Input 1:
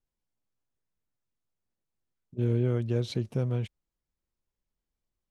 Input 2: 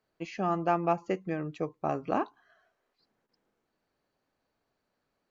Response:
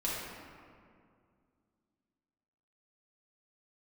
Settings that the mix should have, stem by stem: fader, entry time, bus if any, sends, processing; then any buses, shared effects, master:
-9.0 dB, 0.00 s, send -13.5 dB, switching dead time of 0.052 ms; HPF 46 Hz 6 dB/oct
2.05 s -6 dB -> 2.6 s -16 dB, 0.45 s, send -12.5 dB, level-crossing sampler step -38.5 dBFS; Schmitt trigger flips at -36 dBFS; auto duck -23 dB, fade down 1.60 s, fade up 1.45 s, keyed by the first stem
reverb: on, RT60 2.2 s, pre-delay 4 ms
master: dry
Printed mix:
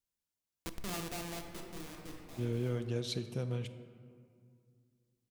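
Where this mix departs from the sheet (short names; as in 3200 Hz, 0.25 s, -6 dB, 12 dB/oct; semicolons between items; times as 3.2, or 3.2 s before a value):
stem 1: missing switching dead time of 0.052 ms; master: extra high shelf 2500 Hz +11.5 dB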